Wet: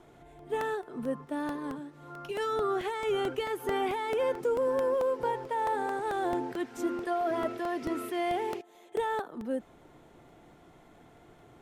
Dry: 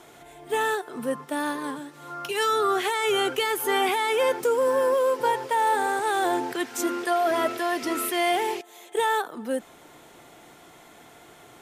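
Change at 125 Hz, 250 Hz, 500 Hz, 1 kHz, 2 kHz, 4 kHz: no reading, -3.5 dB, -5.5 dB, -8.0 dB, -11.0 dB, -13.5 dB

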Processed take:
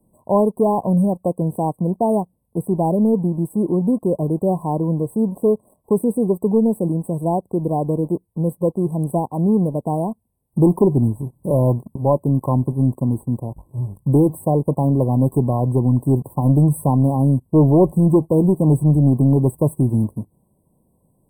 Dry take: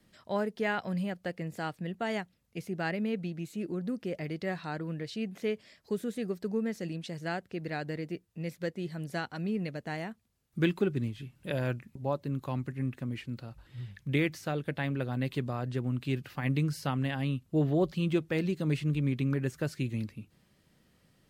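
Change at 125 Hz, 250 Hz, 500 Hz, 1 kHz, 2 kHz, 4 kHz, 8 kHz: +15.5 dB, +15.5 dB, +15.0 dB, +15.0 dB, under -40 dB, under -40 dB, no reading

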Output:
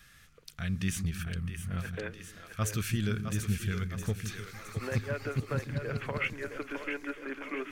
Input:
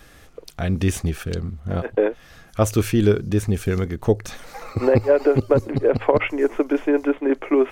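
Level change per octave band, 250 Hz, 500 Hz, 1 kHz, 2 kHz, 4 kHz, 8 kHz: -14.5 dB, -21.0 dB, -13.0 dB, -6.0 dB, -5.5 dB, -5.5 dB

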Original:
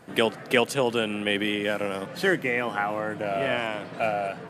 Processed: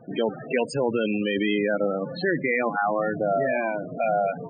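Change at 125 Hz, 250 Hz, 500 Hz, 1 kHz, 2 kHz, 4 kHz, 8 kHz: +1.5 dB, +3.0 dB, +2.5 dB, +2.0 dB, -1.5 dB, -7.0 dB, no reading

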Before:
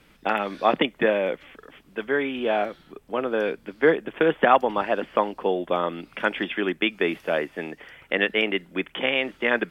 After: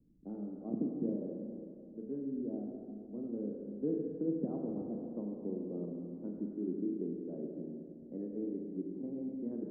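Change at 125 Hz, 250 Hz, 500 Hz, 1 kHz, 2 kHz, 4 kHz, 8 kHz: -5.5 dB, -6.5 dB, -18.0 dB, -34.5 dB, under -40 dB, under -40 dB, no reading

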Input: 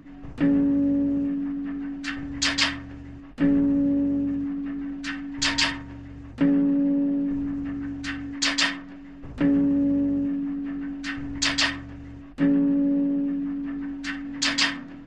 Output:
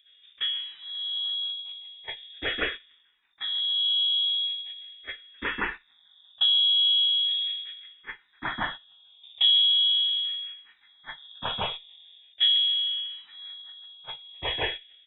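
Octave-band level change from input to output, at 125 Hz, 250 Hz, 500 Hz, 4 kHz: under -10 dB, -28.0 dB, -7.0 dB, +8.5 dB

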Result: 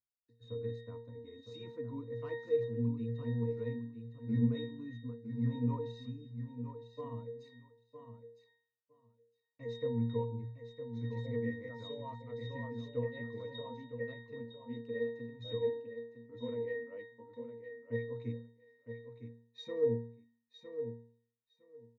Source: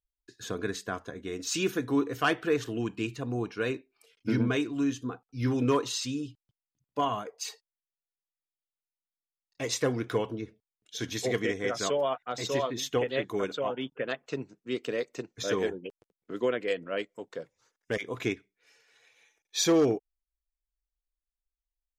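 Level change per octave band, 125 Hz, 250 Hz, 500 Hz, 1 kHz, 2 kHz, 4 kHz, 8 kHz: -1.0 dB, -8.0 dB, -7.5 dB, -16.0 dB, -14.5 dB, -16.0 dB, under -35 dB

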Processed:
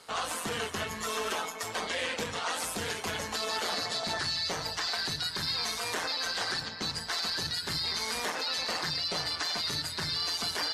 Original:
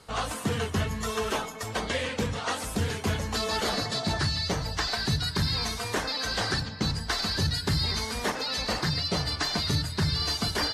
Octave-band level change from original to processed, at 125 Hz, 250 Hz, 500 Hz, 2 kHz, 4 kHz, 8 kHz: -15.0 dB, -10.5 dB, -5.0 dB, -1.5 dB, -1.5 dB, -0.5 dB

